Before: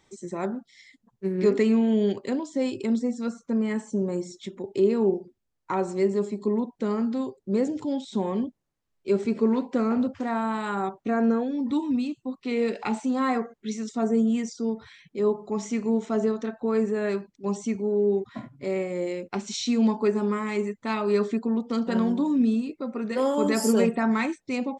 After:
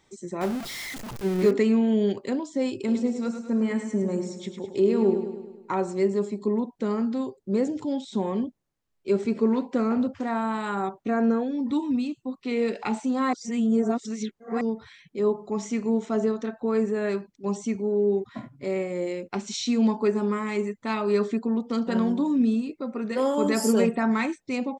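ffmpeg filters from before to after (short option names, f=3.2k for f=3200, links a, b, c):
-filter_complex "[0:a]asettb=1/sr,asplit=3[a][b][c];[a]atrim=end=0.414[d];[b]atrim=start=0.41:end=1.51,asetpts=PTS-STARTPTS,afade=t=in:d=0.004:c=qsin,afade=t=out:st=1.096:d=0.004:c=qsin,aeval=exprs='val(0)+0.5*0.0299*sgn(val(0))':c=same[e];[c]atrim=start=1.506[f];[d][e]acrossfade=d=0.004:c1=hsin:c2=qsin[g];[g][f]acrossfade=d=0.004:c1=qsin:c2=hsin,asplit=3[h][i][j];[h]afade=t=out:st=2.86:d=0.02[k];[i]aecho=1:1:104|208|312|416|520|624|728:0.376|0.207|0.114|0.0625|0.0344|0.0189|0.0104,afade=t=in:st=2.86:d=0.02,afade=t=out:st=5.75:d=0.02[l];[j]afade=t=in:st=5.75:d=0.02[m];[k][l][m]amix=inputs=3:normalize=0,asplit=3[n][o][p];[n]atrim=end=13.332[q];[o]atrim=start=13.328:end=14.612,asetpts=PTS-STARTPTS,areverse[r];[p]atrim=start=14.608[s];[q][r]acrossfade=d=0.004:c1=hsin:c2=hsin[t];[t][s]acrossfade=d=0.004:c1=hsin:c2=hsin"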